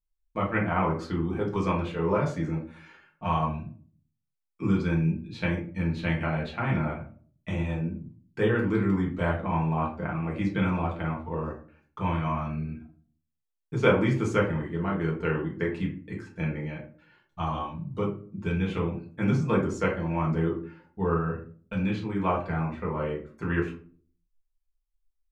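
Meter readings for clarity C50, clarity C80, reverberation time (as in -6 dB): 8.0 dB, 12.5 dB, 0.45 s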